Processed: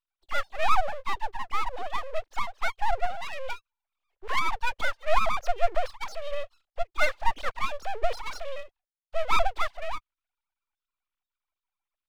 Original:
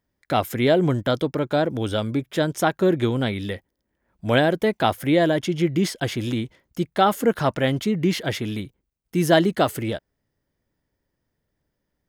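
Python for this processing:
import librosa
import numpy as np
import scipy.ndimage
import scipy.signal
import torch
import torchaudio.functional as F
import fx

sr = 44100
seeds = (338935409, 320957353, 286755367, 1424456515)

y = fx.sine_speech(x, sr)
y = np.abs(y)
y = y * librosa.db_to_amplitude(-2.5)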